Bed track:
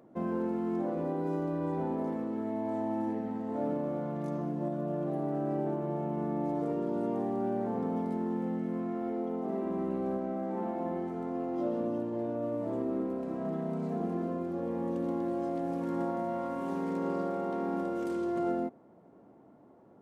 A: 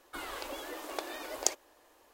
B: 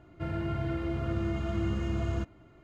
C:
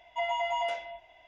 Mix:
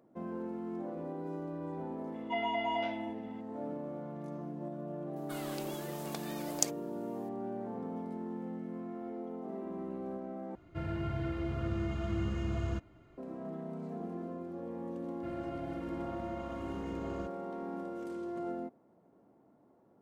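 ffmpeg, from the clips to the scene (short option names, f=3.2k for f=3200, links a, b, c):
-filter_complex "[2:a]asplit=2[a][b];[0:a]volume=-7.5dB[c];[3:a]lowpass=f=4.7k:w=0.5412,lowpass=f=4.7k:w=1.3066[d];[1:a]highshelf=f=4.9k:g=9[e];[b]equalizer=f=98:t=o:w=1.5:g=-7.5[f];[c]asplit=2[g][h];[g]atrim=end=10.554[i];[a]atrim=end=2.63,asetpts=PTS-STARTPTS,volume=-3.5dB[j];[h]atrim=start=13.176[k];[d]atrim=end=1.27,asetpts=PTS-STARTPTS,volume=-3.5dB,afade=t=in:d=0.004:c=hsin,afade=t=out:st=1.266:d=0.004:c=hsin,adelay=2140[l];[e]atrim=end=2.13,asetpts=PTS-STARTPTS,volume=-7dB,afade=t=in:d=0.004:c=hsin,afade=t=out:st=2.126:d=0.004:c=hsin,adelay=5160[m];[f]atrim=end=2.63,asetpts=PTS-STARTPTS,volume=-10dB,afade=t=in:d=0.004:c=hsin,afade=t=out:st=2.626:d=0.004:c=hsin,adelay=15030[n];[i][j]acrossfade=d=0.004:c1=hsin:c2=hsin[o];[o][k]acrossfade=d=0.004:c1=hsin:c2=hsin[p];[p][l][m][n]amix=inputs=4:normalize=0"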